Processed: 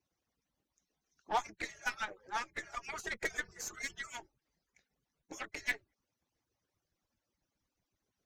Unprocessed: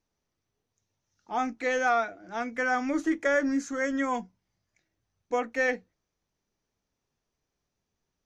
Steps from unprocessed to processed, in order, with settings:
harmonic-percussive split with one part muted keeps percussive
harmonic generator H 8 −21 dB, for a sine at −21 dBFS
level +1.5 dB

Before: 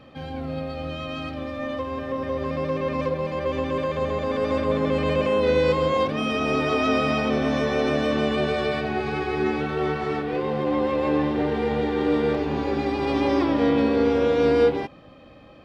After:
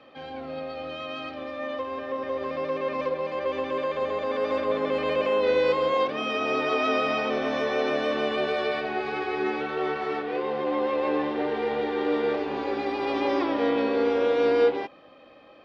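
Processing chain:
three-way crossover with the lows and the highs turned down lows −18 dB, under 290 Hz, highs −16 dB, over 5,700 Hz
level −1 dB

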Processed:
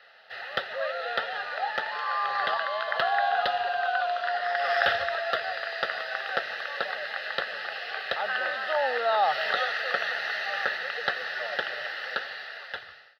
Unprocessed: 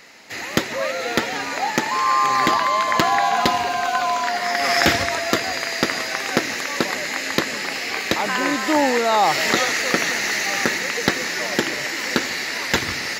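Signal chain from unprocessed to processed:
fade-out on the ending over 1.29 s
three-way crossover with the lows and the highs turned down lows −18 dB, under 520 Hz, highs −24 dB, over 3,600 Hz
phaser with its sweep stopped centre 1,500 Hz, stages 8
level −2 dB

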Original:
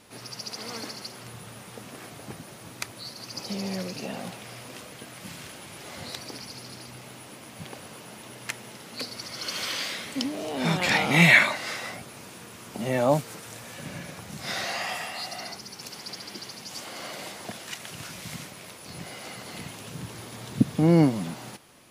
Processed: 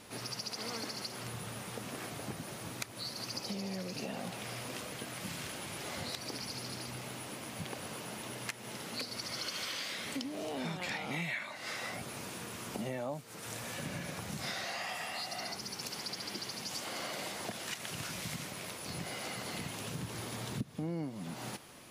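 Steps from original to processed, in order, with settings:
downward compressor 8 to 1, threshold −37 dBFS, peak gain reduction 24 dB
level +1 dB

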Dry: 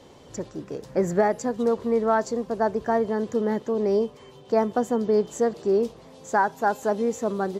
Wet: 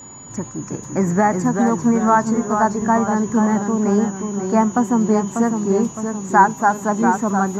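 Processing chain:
steady tone 6,900 Hz −38 dBFS
delay with pitch and tempo change per echo 311 ms, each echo −1 semitone, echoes 3, each echo −6 dB
octave-band graphic EQ 125/250/500/1,000/2,000/4,000 Hz +9/+8/−9/+11/+4/−5 dB
level +1.5 dB

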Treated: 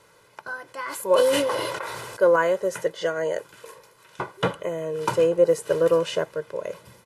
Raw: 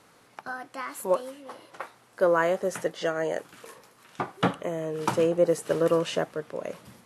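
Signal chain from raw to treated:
comb filter 2 ms, depth 68%
0:00.65–0:02.36: level that may fall only so fast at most 25 dB per second

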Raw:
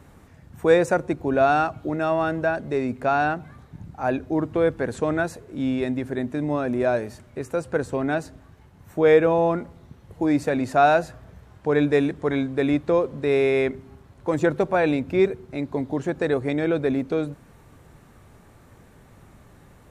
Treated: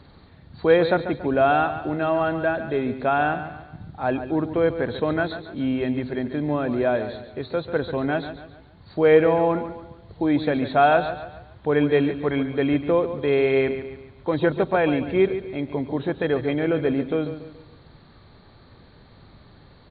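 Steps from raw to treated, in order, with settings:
hearing-aid frequency compression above 3,100 Hz 4 to 1
repeating echo 141 ms, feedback 41%, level −11 dB

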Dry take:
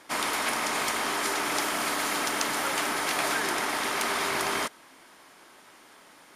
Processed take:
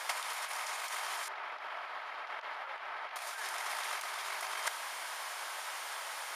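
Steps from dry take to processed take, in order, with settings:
high-pass filter 640 Hz 24 dB per octave
compressor whose output falls as the input rises −37 dBFS, ratio −0.5
0:01.28–0:03.16: high-frequency loss of the air 360 metres
level +2 dB

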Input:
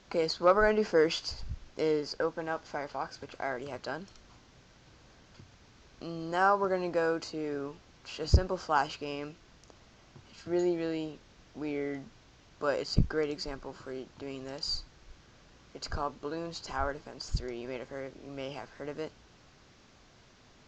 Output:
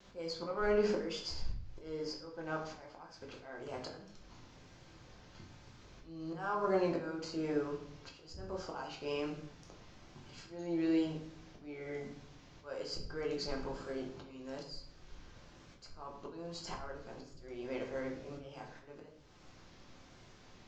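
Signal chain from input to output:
in parallel at −7 dB: soft clipping −19.5 dBFS, distortion −13 dB
on the sum: pitch vibrato 1.1 Hz 43 cents
volume swells 480 ms
rectangular room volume 110 cubic metres, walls mixed, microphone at 0.87 metres
level −6.5 dB

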